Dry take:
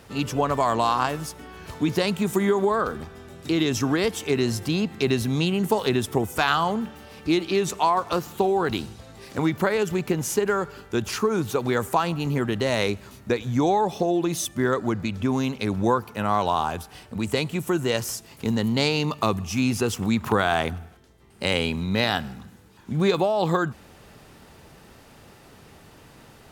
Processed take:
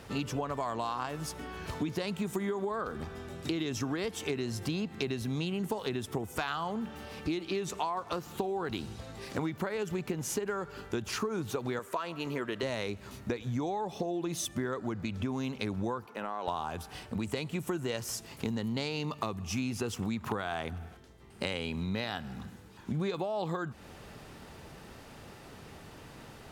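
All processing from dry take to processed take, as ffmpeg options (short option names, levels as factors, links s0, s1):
-filter_complex "[0:a]asettb=1/sr,asplit=3[s0][s1][s2];[s0]atrim=end=11.794[s3];[s1]atrim=start=11.79:end=12.63,asetpts=PTS-STARTPTS,afade=t=in:d=0.004:c=qsin,afade=t=out:st=0.836:d=0.004:c=qsin,asuperstop=centerf=790:order=4:qfactor=6.3,bass=f=250:g=-15,treble=f=4000:g=-4[s4];[s2]atrim=start=12.626[s5];[s3][s4]acrossfade=d=0.004:c1=hsin:c2=qsin[s6];[s6][s5]acrossfade=d=0.004:c1=qsin:c2=hsin,asettb=1/sr,asplit=3[s7][s8][s9];[s7]atrim=end=16.064[s10];[s8]atrim=start=16.06:end=16.48,asetpts=PTS-STARTPTS,afade=t=in:d=0.004:c=qsin,afade=t=out:st=0.416:d=0.004:c=qsin,highpass=280,highshelf=f=3500:g=-8,acompressor=threshold=0.0355:ratio=6:attack=3.2:release=140:knee=1:detection=peak[s11];[s9]atrim=start=16.476[s12];[s10][s11]acrossfade=d=0.004:c1=hsin:c2=qsin[s13];[s13][s12]acrossfade=d=0.004:c1=qsin:c2=hsin,highshelf=f=9200:g=-5.5,acompressor=threshold=0.0282:ratio=6"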